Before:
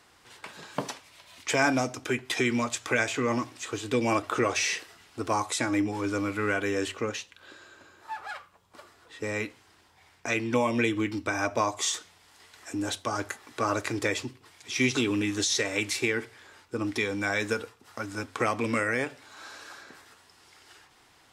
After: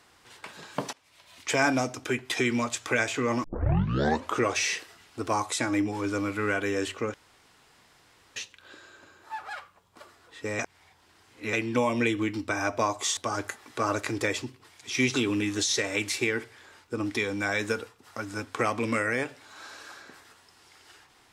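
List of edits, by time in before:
0:00.93–0:01.56: fade in equal-power, from −21 dB
0:03.44: tape start 0.94 s
0:07.14: splice in room tone 1.22 s
0:09.37–0:10.31: reverse
0:11.95–0:12.98: remove

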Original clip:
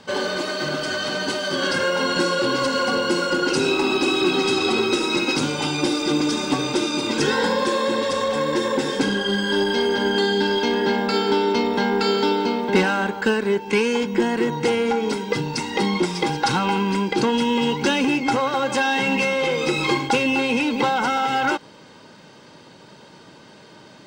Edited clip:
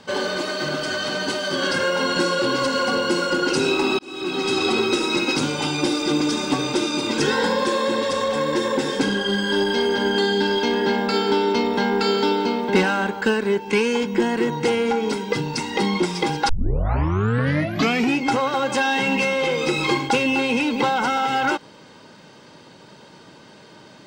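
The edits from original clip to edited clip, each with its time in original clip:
0:03.99–0:04.60: fade in
0:16.49: tape start 1.70 s

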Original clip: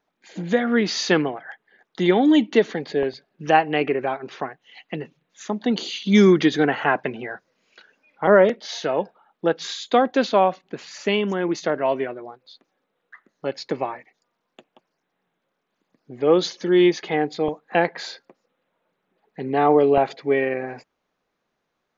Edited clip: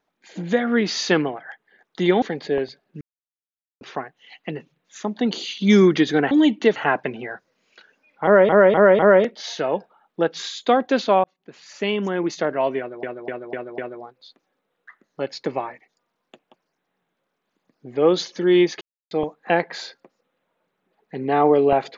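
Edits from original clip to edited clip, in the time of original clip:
0:02.22–0:02.67: move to 0:06.76
0:03.46–0:04.26: silence
0:08.24–0:08.49: repeat, 4 plays
0:10.49–0:11.30: fade in
0:12.03–0:12.28: repeat, 5 plays
0:17.06–0:17.36: silence

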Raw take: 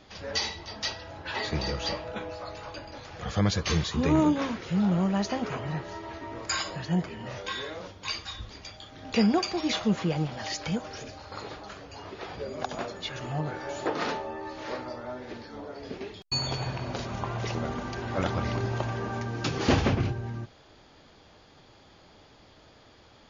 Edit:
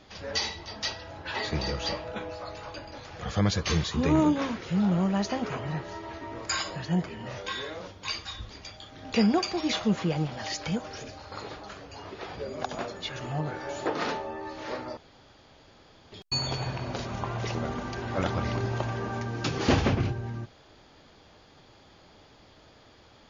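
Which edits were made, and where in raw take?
0:14.97–0:16.12: fill with room tone

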